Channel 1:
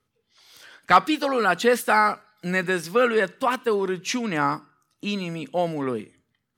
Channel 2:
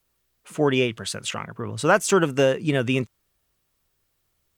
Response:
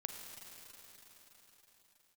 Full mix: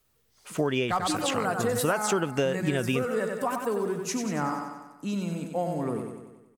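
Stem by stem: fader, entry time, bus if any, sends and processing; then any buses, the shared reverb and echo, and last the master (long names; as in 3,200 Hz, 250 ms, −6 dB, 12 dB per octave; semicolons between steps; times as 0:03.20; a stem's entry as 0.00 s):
0.0 dB, 0.00 s, no send, echo send −6 dB, drawn EQ curve 140 Hz 0 dB, 410 Hz −6 dB, 670 Hz −3 dB, 3,400 Hz −15 dB, 7,600 Hz +2 dB
+1.0 dB, 0.00 s, no send, no echo send, no processing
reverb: not used
echo: repeating echo 94 ms, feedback 56%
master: downward compressor 5 to 1, threshold −23 dBFS, peak gain reduction 11 dB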